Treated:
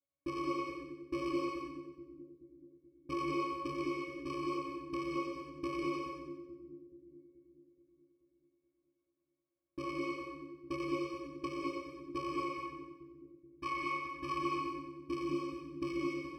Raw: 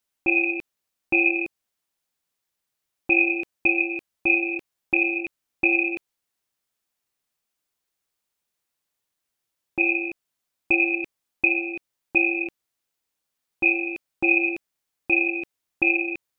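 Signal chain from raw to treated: bit-reversed sample order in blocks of 64 samples; peaking EQ 490 Hz +9 dB 1.9 oct, from 12.28 s 1.3 kHz, from 14.39 s 280 Hz; pitch-class resonator C#, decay 0.23 s; two-band feedback delay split 360 Hz, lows 429 ms, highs 92 ms, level -7.5 dB; gated-style reverb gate 250 ms rising, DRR -1 dB; trim +1 dB

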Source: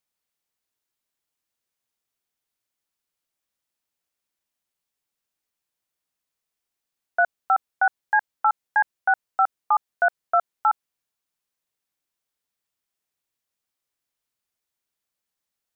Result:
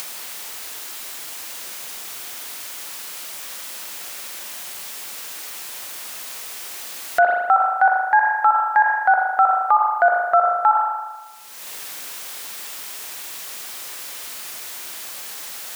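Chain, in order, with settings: upward compressor, threshold -26 dBFS; high-pass 540 Hz 6 dB/octave; dynamic bell 1.6 kHz, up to -8 dB, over -39 dBFS, Q 2.3; spring tank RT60 1.2 s, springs 38 ms, chirp 30 ms, DRR 7 dB; loudness maximiser +24 dB; trim -5.5 dB

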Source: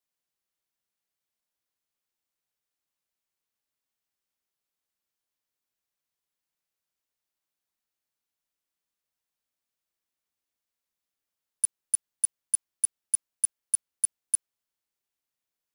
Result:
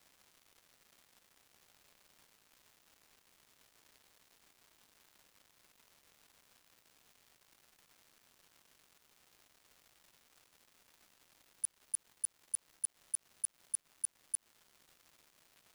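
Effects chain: crackle 420 per s -63 dBFS; slow attack 177 ms; trim +11.5 dB

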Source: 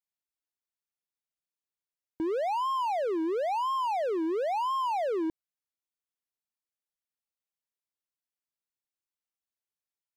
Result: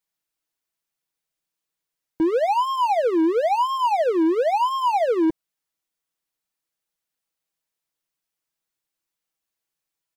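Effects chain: comb 6.2 ms, depth 49%; trim +8 dB

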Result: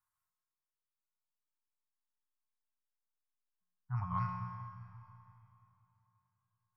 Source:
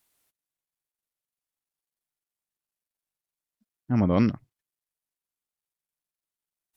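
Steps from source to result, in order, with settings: elliptic band-stop 130–1000 Hz, stop band 50 dB; reverb removal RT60 0.55 s; resonant high shelf 1.8 kHz -14 dB, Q 1.5; feedback comb 180 Hz, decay 1.4 s, mix 90%; reverberation RT60 3.3 s, pre-delay 20 ms, DRR 7 dB; trim +11 dB

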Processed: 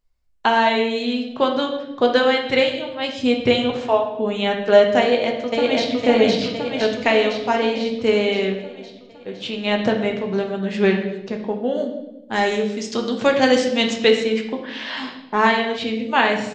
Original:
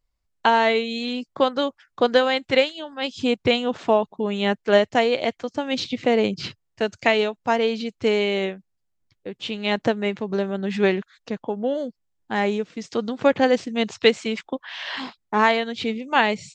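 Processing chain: 3.70–4.13 s: high-pass 530 Hz; 5.01–5.93 s: echo throw 510 ms, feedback 65%, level -0.5 dB; 12.32–13.92 s: treble shelf 3.9 kHz -> 2.7 kHz +12 dB; reverberation RT60 0.95 s, pre-delay 5 ms, DRR 1.5 dB

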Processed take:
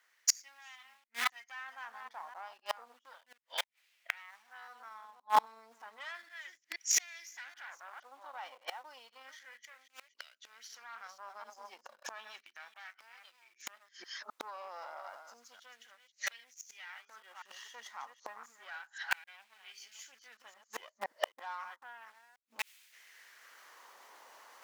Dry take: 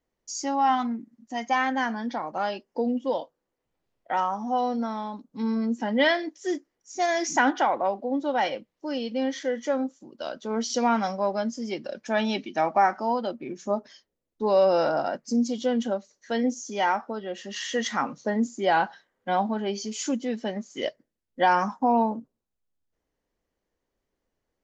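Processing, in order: chunks repeated in reverse 260 ms, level -8.5 dB; dynamic bell 280 Hz, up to -5 dB, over -43 dBFS, Q 5.3; Chebyshev shaper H 6 -20 dB, 7 -30 dB, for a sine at -9 dBFS; in parallel at -9.5 dB: bit crusher 6-bit; on the sum: peak limiter -13.5 dBFS, peak gain reduction 6.5 dB; inverted gate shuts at -27 dBFS, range -39 dB; reverse; upward compressor, threshold -57 dBFS; reverse; LFO high-pass sine 0.32 Hz 940–2300 Hz; trim +15.5 dB

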